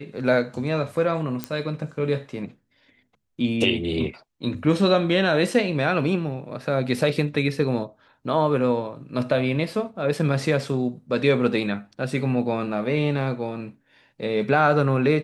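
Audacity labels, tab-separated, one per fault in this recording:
1.440000	1.440000	click −11 dBFS

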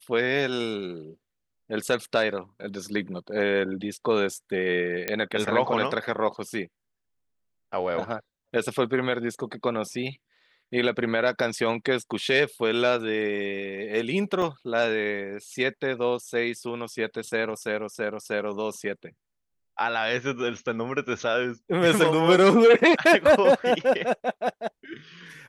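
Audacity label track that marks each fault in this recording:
5.080000	5.080000	click −10 dBFS
14.420000	14.420000	drop-out 3.1 ms

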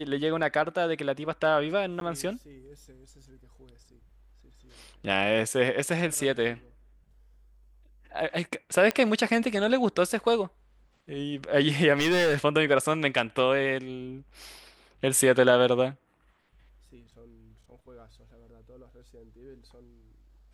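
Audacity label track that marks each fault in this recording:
2.000000	2.010000	drop-out 12 ms
8.910000	8.910000	click −12 dBFS
11.940000	12.370000	clipping −20 dBFS

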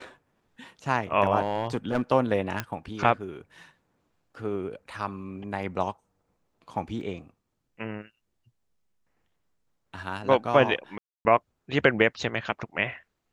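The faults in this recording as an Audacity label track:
1.410000	2.020000	clipping −19.5 dBFS
2.600000	2.600000	click −13 dBFS
7.010000	7.010000	drop-out 2.6 ms
10.980000	11.250000	drop-out 270 ms

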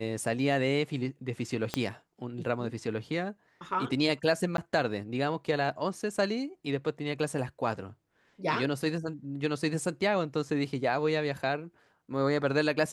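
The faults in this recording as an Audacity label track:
1.740000	1.740000	click −14 dBFS
4.570000	4.580000	drop-out 12 ms

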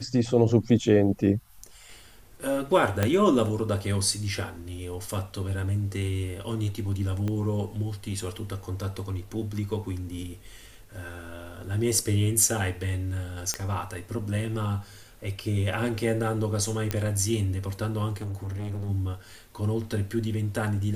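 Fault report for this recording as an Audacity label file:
3.030000	3.030000	click −9 dBFS
7.280000	7.280000	click −19 dBFS
13.540000	13.540000	click −12 dBFS
16.910000	16.910000	click −12 dBFS
18.210000	18.900000	clipping −30 dBFS

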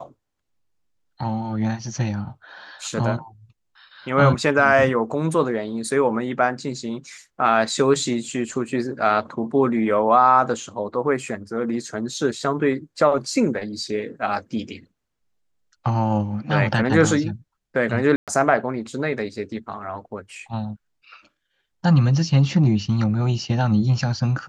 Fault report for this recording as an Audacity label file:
18.160000	18.280000	drop-out 117 ms

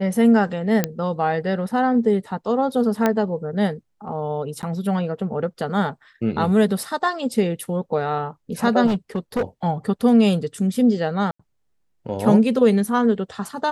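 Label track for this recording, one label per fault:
0.840000	0.840000	click −5 dBFS
3.060000	3.060000	click −6 dBFS
4.620000	4.630000	drop-out 9.6 ms
8.860000	9.430000	clipping −17.5 dBFS
11.310000	11.390000	drop-out 85 ms

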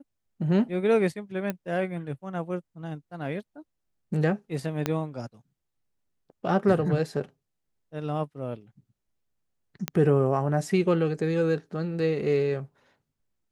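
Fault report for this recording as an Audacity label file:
1.500000	1.500000	click −16 dBFS
4.860000	4.860000	click −11 dBFS
9.880000	9.880000	click −11 dBFS

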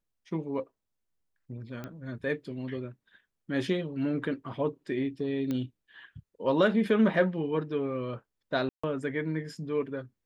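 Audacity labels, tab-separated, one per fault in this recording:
1.840000	1.840000	click −25 dBFS
5.510000	5.510000	click −20 dBFS
8.690000	8.840000	drop-out 145 ms

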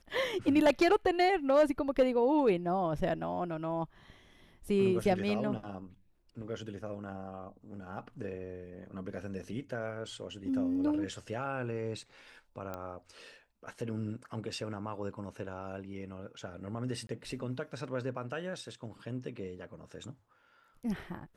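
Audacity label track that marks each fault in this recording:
12.740000	12.740000	click −25 dBFS
17.070000	17.090000	drop-out 22 ms

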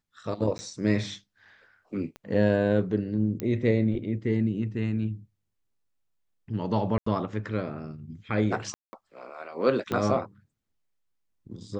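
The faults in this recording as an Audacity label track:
0.580000	0.590000	drop-out 10 ms
2.160000	2.160000	click −27 dBFS
3.400000	3.400000	click −17 dBFS
6.980000	7.060000	drop-out 84 ms
8.740000	8.930000	drop-out 190 ms
9.920000	9.920000	click −16 dBFS

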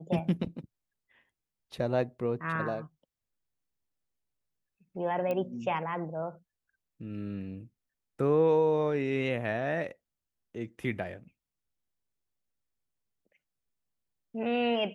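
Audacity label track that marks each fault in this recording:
5.310000	5.310000	click −21 dBFS

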